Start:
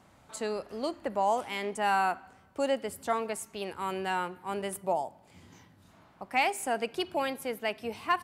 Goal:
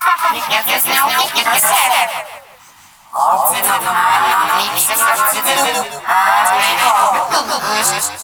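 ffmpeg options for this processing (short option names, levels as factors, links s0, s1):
-filter_complex "[0:a]areverse,aemphasis=mode=production:type=50fm,agate=range=0.282:threshold=0.00355:ratio=16:detection=peak,lowshelf=f=660:t=q:w=3:g=-12,acompressor=threshold=0.0316:ratio=5,asplit=3[s0][s1][s2];[s1]asetrate=55563,aresample=44100,atempo=0.793701,volume=0.631[s3];[s2]asetrate=58866,aresample=44100,atempo=0.749154,volume=0.447[s4];[s0][s3][s4]amix=inputs=3:normalize=0,flanger=delay=16:depth=7.8:speed=0.59,asplit=5[s5][s6][s7][s8][s9];[s6]adelay=171,afreqshift=-64,volume=0.708[s10];[s7]adelay=342,afreqshift=-128,volume=0.219[s11];[s8]adelay=513,afreqshift=-192,volume=0.0684[s12];[s9]adelay=684,afreqshift=-256,volume=0.0211[s13];[s5][s10][s11][s12][s13]amix=inputs=5:normalize=0,alimiter=level_in=15:limit=0.891:release=50:level=0:latency=1,volume=0.891"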